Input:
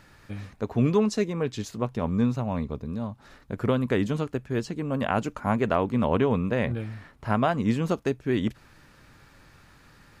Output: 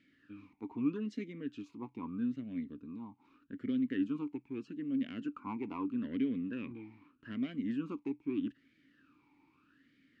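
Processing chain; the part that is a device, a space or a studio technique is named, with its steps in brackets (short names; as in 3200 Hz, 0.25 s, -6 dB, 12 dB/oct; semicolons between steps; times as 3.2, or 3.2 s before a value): talk box (tube stage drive 16 dB, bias 0.2; vowel sweep i-u 0.8 Hz)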